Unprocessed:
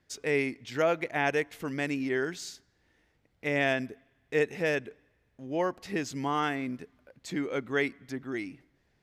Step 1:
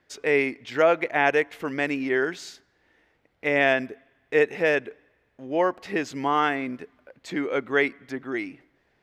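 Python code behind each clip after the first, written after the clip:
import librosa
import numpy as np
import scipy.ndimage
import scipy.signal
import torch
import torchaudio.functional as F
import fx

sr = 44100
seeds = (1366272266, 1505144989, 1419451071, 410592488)

y = fx.bass_treble(x, sr, bass_db=-10, treble_db=-10)
y = F.gain(torch.from_numpy(y), 7.5).numpy()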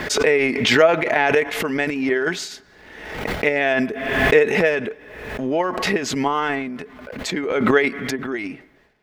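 y = x + 0.32 * np.pad(x, (int(4.7 * sr / 1000.0), 0))[:len(x)]
y = fx.transient(y, sr, attack_db=8, sustain_db=12)
y = fx.pre_swell(y, sr, db_per_s=47.0)
y = F.gain(torch.from_numpy(y), -1.0).numpy()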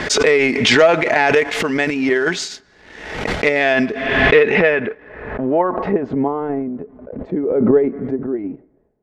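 y = fx.leveller(x, sr, passes=1)
y = fx.filter_sweep_lowpass(y, sr, from_hz=7200.0, to_hz=500.0, start_s=3.47, end_s=6.45, q=1.1)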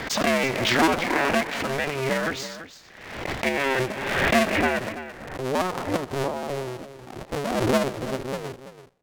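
y = fx.cycle_switch(x, sr, every=2, mode='inverted')
y = y + 10.0 ** (-13.0 / 20.0) * np.pad(y, (int(334 * sr / 1000.0), 0))[:len(y)]
y = np.interp(np.arange(len(y)), np.arange(len(y))[::2], y[::2])
y = F.gain(torch.from_numpy(y), -8.5).numpy()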